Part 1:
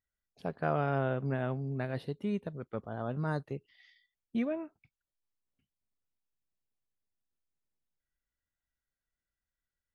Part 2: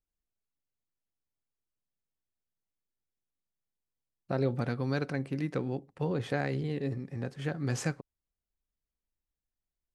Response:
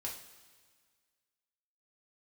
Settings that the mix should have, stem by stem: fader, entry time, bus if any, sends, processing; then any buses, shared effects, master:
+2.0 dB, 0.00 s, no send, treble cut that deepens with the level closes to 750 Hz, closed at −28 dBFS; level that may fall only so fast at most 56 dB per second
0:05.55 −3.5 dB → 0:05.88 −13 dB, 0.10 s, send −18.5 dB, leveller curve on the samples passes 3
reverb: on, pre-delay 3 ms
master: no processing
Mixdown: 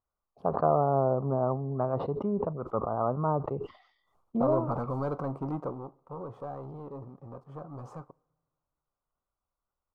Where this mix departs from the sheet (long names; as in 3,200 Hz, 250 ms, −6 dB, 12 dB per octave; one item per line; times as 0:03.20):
stem 2 −3.5 dB → −10.5 dB
master: extra drawn EQ curve 270 Hz 0 dB, 1,200 Hz +13 dB, 1,700 Hz −18 dB